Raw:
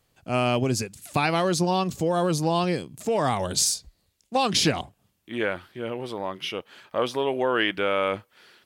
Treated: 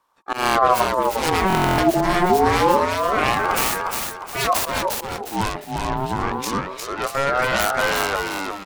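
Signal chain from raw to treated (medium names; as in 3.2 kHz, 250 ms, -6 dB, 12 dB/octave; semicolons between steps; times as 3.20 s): self-modulated delay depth 0.68 ms; in parallel at +1 dB: peak limiter -21 dBFS, peak gain reduction 11 dB; on the sum: bass shelf 480 Hz +9.5 dB; slow attack 126 ms; on a send: feedback delay 355 ms, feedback 36%, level -4 dB; on the sum: gate -41 dBFS, range -9 dB; buffer glitch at 1.48 s, samples 1024, times 12; ring modulator with a swept carrier 770 Hz, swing 35%, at 0.26 Hz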